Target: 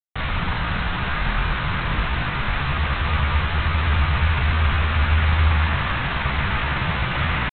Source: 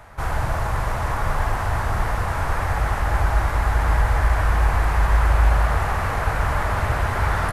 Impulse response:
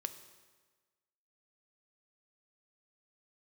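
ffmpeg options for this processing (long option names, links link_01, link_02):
-af "equalizer=frequency=71:width_type=o:width=0.54:gain=-5,asetrate=64194,aresample=44100,atempo=0.686977,aresample=8000,acrusher=bits=4:mix=0:aa=0.000001,aresample=44100"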